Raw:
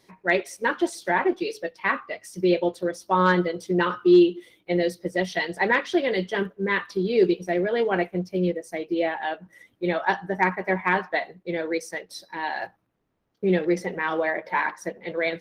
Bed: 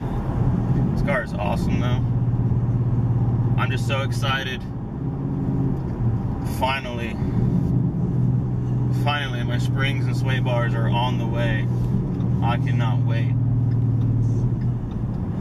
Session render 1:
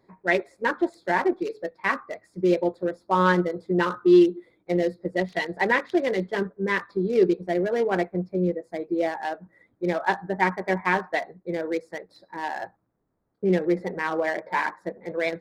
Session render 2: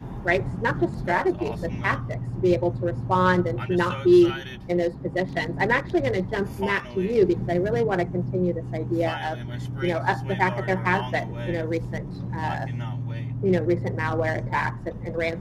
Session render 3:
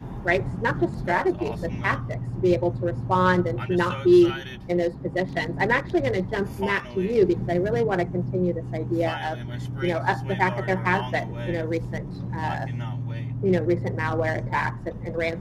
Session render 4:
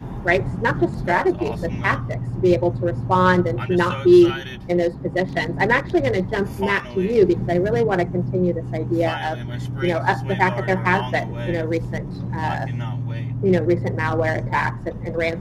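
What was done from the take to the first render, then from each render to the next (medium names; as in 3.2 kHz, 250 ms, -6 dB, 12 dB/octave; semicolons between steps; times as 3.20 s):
local Wiener filter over 15 samples
add bed -10 dB
no audible change
trim +4 dB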